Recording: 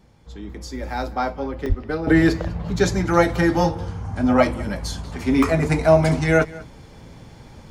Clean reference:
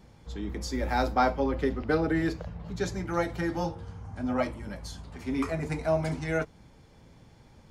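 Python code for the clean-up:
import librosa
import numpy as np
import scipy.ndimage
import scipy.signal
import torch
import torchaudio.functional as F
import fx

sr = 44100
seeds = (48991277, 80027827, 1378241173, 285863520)

y = fx.fix_deplosive(x, sr, at_s=(1.68,))
y = fx.fix_interpolate(y, sr, at_s=(1.66, 2.79, 5.43), length_ms=2.4)
y = fx.fix_echo_inverse(y, sr, delay_ms=198, level_db=-20.5)
y = fx.gain(y, sr, db=fx.steps((0.0, 0.0), (2.07, -12.0)))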